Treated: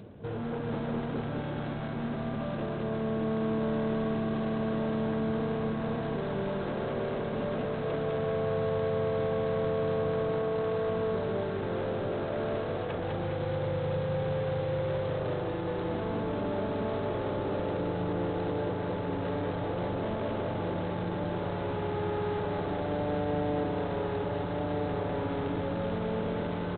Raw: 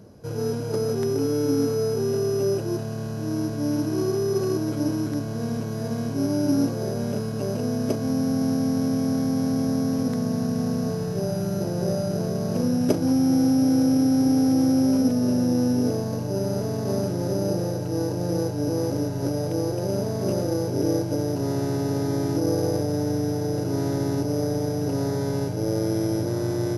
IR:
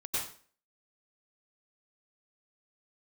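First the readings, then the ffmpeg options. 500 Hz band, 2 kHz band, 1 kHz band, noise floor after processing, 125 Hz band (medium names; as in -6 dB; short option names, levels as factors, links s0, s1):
-4.0 dB, +2.5 dB, +1.0 dB, -34 dBFS, -7.5 dB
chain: -af "afftfilt=real='re*lt(hypot(re,im),0.316)':imag='im*lt(hypot(re,im),0.316)':win_size=1024:overlap=0.75,areverse,acompressor=mode=upward:threshold=0.00891:ratio=2.5,areverse,asoftclip=type=hard:threshold=0.0251,aecho=1:1:204|408|612|816|1020|1224|1428|1632|1836:0.708|0.418|0.246|0.145|0.0858|0.0506|0.0299|0.0176|0.0104" -ar 8000 -c:a adpcm_g726 -b:a 24k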